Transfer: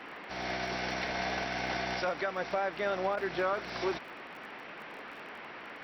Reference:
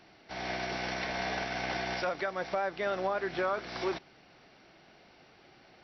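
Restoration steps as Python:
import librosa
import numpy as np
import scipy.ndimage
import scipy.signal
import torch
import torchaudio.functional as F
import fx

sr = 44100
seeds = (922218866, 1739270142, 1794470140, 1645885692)

y = fx.fix_declick_ar(x, sr, threshold=6.5)
y = fx.fix_interpolate(y, sr, at_s=(3.16,), length_ms=10.0)
y = fx.noise_reduce(y, sr, print_start_s=3.99, print_end_s=4.49, reduce_db=13.0)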